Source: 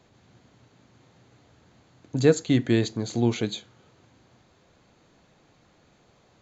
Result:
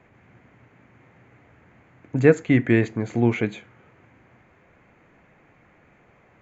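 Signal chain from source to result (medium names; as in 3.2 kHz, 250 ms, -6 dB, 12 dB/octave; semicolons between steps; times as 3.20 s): resonant high shelf 3 kHz -11 dB, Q 3; trim +3 dB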